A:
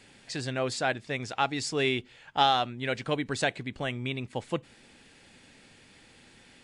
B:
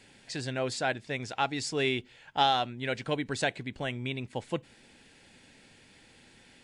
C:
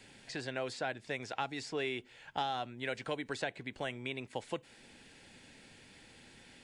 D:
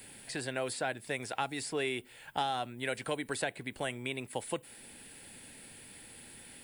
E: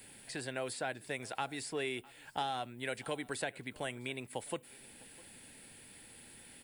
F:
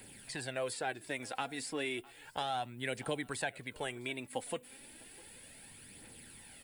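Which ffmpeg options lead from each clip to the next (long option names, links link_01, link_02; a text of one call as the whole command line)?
ffmpeg -i in.wav -af "bandreject=frequency=1200:width=9.8,volume=-1.5dB" out.wav
ffmpeg -i in.wav -filter_complex "[0:a]acrossover=split=330|2700|5600[link_01][link_02][link_03][link_04];[link_01]acompressor=threshold=-49dB:ratio=4[link_05];[link_02]acompressor=threshold=-35dB:ratio=4[link_06];[link_03]acompressor=threshold=-51dB:ratio=4[link_07];[link_04]acompressor=threshold=-57dB:ratio=4[link_08];[link_05][link_06][link_07][link_08]amix=inputs=4:normalize=0" out.wav
ffmpeg -i in.wav -af "aexciter=amount=11.1:drive=4:freq=8800,volume=2.5dB" out.wav
ffmpeg -i in.wav -af "aecho=1:1:655:0.0668,volume=-3.5dB" out.wav
ffmpeg -i in.wav -af "aphaser=in_gain=1:out_gain=1:delay=4.3:decay=0.44:speed=0.33:type=triangular" out.wav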